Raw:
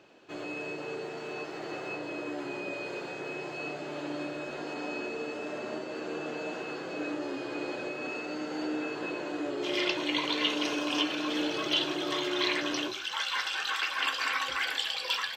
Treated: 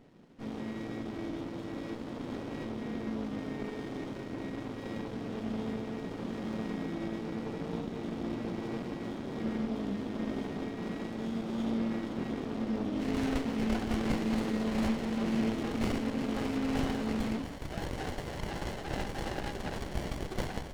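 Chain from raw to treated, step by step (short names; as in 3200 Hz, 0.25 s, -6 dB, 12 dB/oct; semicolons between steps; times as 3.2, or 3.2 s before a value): speed mistake 45 rpm record played at 33 rpm; fifteen-band EQ 160 Hz +8 dB, 1600 Hz -7 dB, 4000 Hz +5 dB; running maximum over 33 samples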